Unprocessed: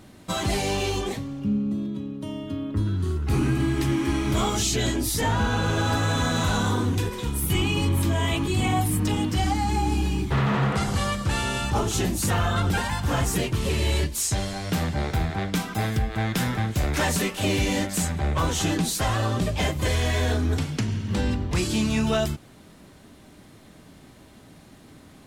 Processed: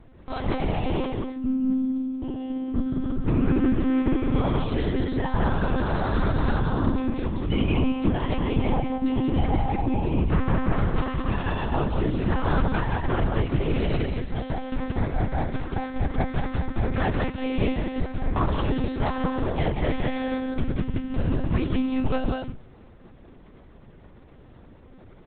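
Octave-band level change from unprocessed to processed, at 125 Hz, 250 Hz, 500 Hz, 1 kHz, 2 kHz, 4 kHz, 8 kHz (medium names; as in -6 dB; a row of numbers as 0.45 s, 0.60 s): -2.5 dB, +1.5 dB, 0.0 dB, -2.0 dB, -5.0 dB, -10.5 dB, under -40 dB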